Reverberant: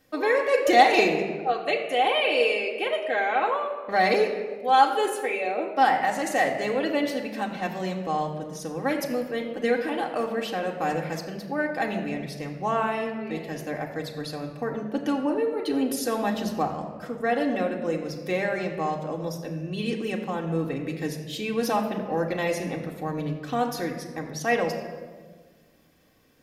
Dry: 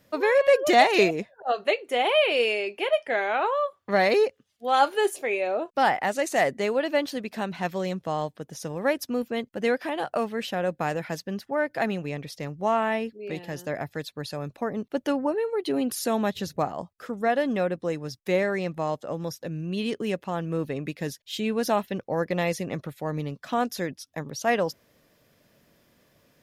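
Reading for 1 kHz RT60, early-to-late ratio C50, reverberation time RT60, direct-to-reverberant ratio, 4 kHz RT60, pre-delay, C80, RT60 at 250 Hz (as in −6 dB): 1.3 s, 7.0 dB, 1.5 s, 0.0 dB, 0.95 s, 3 ms, 8.5 dB, 1.8 s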